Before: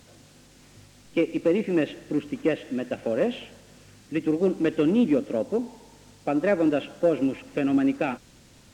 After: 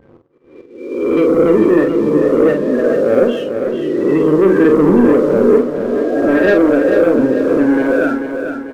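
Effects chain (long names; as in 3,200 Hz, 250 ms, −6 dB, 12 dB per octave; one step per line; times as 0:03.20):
peak hold with a rise ahead of every peak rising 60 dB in 1.96 s
thirty-one-band graphic EQ 400 Hz +6 dB, 800 Hz −8 dB, 1,600 Hz +9 dB
spectral peaks only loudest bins 16
leveller curve on the samples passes 2
volume swells 649 ms
double-tracking delay 46 ms −6 dB
repeating echo 443 ms, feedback 47%, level −7.5 dB
level +1.5 dB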